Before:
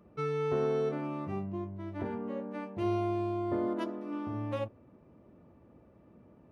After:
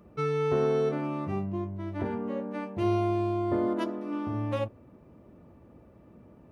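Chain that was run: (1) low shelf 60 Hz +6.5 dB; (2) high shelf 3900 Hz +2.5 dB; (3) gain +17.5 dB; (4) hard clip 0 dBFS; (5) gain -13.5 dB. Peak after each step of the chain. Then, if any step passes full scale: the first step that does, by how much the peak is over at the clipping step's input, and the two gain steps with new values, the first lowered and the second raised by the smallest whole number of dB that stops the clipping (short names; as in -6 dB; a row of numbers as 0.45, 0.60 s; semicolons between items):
-20.0, -20.0, -2.5, -2.5, -16.0 dBFS; no overload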